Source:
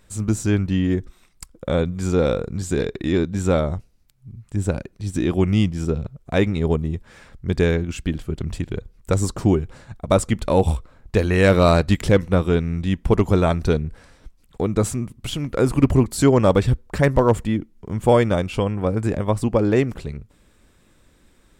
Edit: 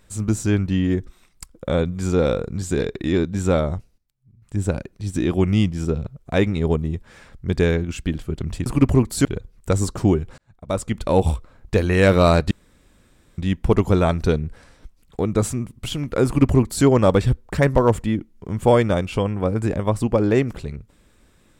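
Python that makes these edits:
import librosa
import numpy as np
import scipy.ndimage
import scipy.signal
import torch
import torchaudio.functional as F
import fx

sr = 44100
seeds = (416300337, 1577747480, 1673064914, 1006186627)

y = fx.edit(x, sr, fx.fade_down_up(start_s=3.77, length_s=0.86, db=-14.5, fade_s=0.21, curve='log'),
    fx.fade_in_span(start_s=9.79, length_s=0.79),
    fx.room_tone_fill(start_s=11.92, length_s=0.87),
    fx.duplicate(start_s=15.67, length_s=0.59, to_s=8.66), tone=tone)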